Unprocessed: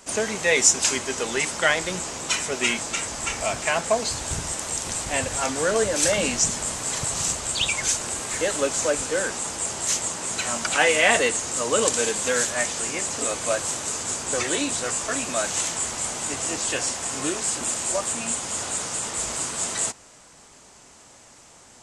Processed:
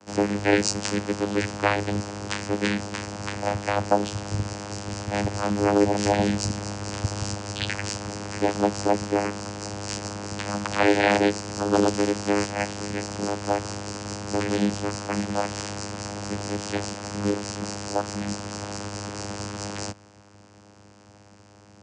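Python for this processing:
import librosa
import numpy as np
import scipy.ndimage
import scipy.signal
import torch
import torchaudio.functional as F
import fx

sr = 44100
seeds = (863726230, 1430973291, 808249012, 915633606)

y = fx.vocoder(x, sr, bands=8, carrier='saw', carrier_hz=102.0)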